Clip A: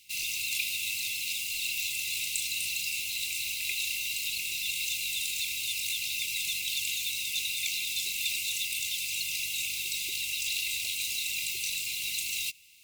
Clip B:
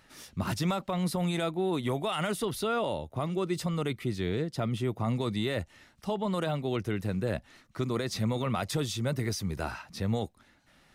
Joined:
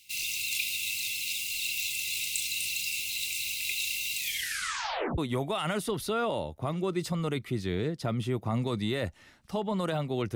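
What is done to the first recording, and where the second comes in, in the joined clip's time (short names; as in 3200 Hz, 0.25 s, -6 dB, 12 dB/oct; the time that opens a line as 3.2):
clip A
4.16 tape stop 1.02 s
5.18 switch to clip B from 1.72 s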